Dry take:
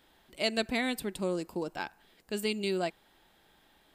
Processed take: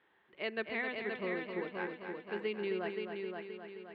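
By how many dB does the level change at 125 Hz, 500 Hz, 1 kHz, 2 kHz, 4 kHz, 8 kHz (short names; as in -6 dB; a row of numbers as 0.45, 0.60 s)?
-8.0 dB, -3.0 dB, -5.0 dB, -1.0 dB, -11.5 dB, under -35 dB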